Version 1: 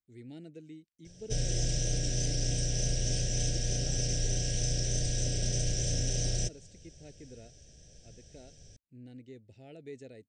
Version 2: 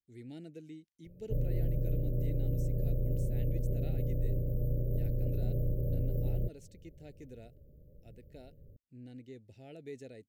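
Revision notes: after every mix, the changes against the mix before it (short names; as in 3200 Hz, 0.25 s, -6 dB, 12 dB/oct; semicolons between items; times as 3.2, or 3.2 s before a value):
background: add brick-wall FIR band-stop 630–13000 Hz; master: remove brick-wall FIR low-pass 9200 Hz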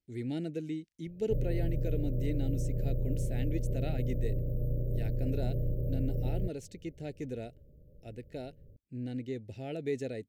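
speech +11.5 dB; master: add high shelf 5300 Hz -5 dB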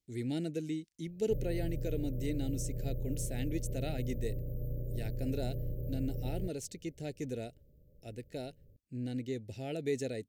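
background -5.5 dB; master: add tone controls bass 0 dB, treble +9 dB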